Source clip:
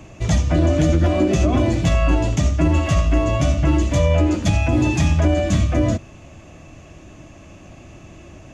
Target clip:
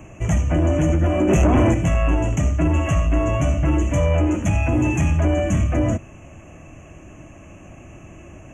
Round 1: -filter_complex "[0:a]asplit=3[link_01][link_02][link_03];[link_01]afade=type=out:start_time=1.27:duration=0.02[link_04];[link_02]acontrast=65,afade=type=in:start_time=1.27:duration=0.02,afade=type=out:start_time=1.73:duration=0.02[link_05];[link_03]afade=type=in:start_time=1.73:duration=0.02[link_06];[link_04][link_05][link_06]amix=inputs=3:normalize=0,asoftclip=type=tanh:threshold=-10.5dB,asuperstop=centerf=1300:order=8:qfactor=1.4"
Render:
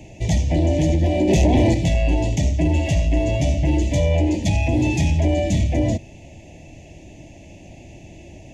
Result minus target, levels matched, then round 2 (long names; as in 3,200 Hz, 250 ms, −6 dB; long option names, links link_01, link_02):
4,000 Hz band +6.0 dB
-filter_complex "[0:a]asplit=3[link_01][link_02][link_03];[link_01]afade=type=out:start_time=1.27:duration=0.02[link_04];[link_02]acontrast=65,afade=type=in:start_time=1.27:duration=0.02,afade=type=out:start_time=1.73:duration=0.02[link_05];[link_03]afade=type=in:start_time=1.73:duration=0.02[link_06];[link_04][link_05][link_06]amix=inputs=3:normalize=0,asoftclip=type=tanh:threshold=-10.5dB,asuperstop=centerf=4300:order=8:qfactor=1.4"